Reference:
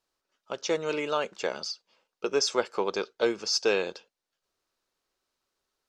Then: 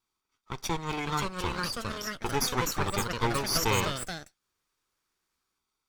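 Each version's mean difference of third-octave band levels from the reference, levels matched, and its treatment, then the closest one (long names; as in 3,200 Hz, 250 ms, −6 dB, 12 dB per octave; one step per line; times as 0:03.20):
12.5 dB: lower of the sound and its delayed copy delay 0.86 ms
delay with pitch and tempo change per echo 637 ms, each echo +3 semitones, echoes 3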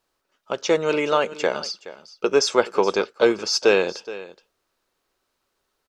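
1.5 dB: parametric band 5,500 Hz −4.5 dB 1.4 octaves
single-tap delay 422 ms −16.5 dB
level +8.5 dB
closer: second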